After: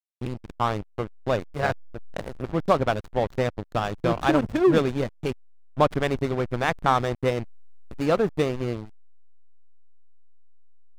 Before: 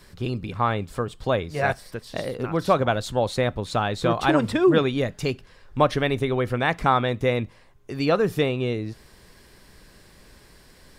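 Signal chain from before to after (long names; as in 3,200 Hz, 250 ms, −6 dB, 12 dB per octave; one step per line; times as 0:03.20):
slack as between gear wheels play −19.5 dBFS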